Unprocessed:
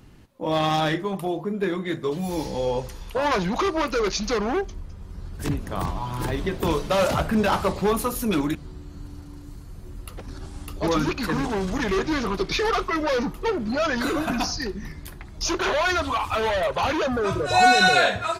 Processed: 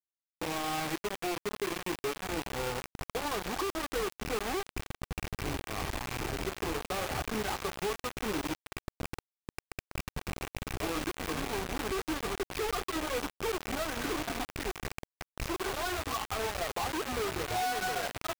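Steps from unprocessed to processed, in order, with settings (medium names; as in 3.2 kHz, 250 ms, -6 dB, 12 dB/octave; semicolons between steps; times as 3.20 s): rattle on loud lows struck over -33 dBFS, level -13 dBFS; low-pass 1.3 kHz 12 dB/octave; comb 2.6 ms, depth 51%; compression 4:1, threshold -30 dBFS, peak gain reduction 16 dB; bit crusher 5-bit; trim -4 dB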